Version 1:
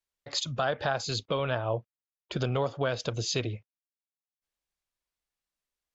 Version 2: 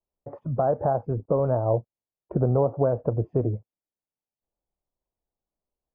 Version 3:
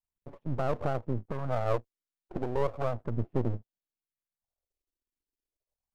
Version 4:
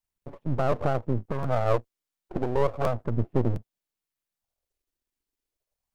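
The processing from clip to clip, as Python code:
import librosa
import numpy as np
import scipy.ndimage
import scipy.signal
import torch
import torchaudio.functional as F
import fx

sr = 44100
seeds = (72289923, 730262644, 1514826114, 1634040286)

y1 = scipy.signal.sosfilt(scipy.signal.cheby2(4, 70, 3700.0, 'lowpass', fs=sr, output='sos'), x)
y1 = y1 * librosa.db_to_amplitude(7.5)
y2 = fx.diode_clip(y1, sr, knee_db=-11.0)
y2 = fx.phaser_stages(y2, sr, stages=4, low_hz=110.0, high_hz=1600.0, hz=0.34, feedback_pct=25)
y2 = np.maximum(y2, 0.0)
y3 = fx.buffer_crackle(y2, sr, first_s=0.71, period_s=0.71, block=512, kind='repeat')
y3 = y3 * librosa.db_to_amplitude(5.0)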